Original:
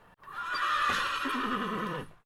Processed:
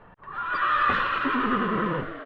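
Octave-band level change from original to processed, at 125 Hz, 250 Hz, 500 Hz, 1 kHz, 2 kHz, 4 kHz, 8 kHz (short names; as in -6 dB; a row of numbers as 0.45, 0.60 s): +9.0 dB, +8.5 dB, +8.5 dB, +6.5 dB, +5.5 dB, -1.0 dB, under -15 dB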